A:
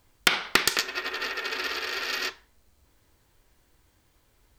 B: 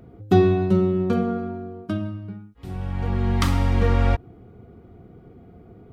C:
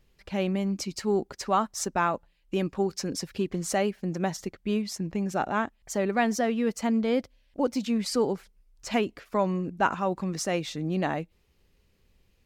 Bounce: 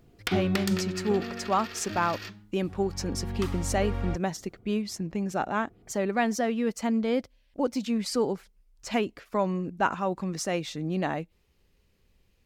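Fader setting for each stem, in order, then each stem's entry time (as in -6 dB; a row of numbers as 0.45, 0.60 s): -11.5, -12.5, -1.0 dB; 0.00, 0.00, 0.00 s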